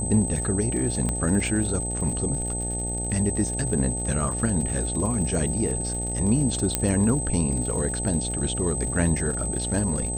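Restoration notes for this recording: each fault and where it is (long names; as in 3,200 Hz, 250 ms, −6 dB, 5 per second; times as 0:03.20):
mains buzz 60 Hz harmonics 15 −31 dBFS
surface crackle 99 per second −33 dBFS
whistle 8,200 Hz −29 dBFS
0:01.09: click −14 dBFS
0:06.75: click −5 dBFS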